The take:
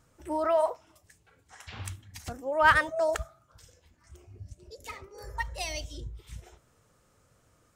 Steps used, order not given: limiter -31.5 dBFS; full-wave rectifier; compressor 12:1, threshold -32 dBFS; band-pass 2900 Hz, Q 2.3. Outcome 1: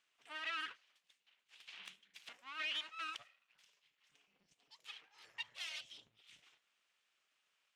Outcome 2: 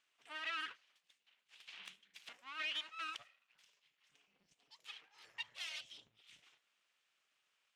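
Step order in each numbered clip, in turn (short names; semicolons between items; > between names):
full-wave rectifier > band-pass > limiter > compressor; full-wave rectifier > band-pass > compressor > limiter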